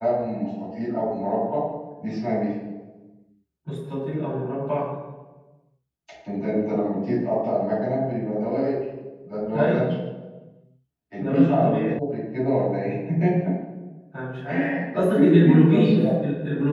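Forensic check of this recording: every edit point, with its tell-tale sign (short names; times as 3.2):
11.99 sound cut off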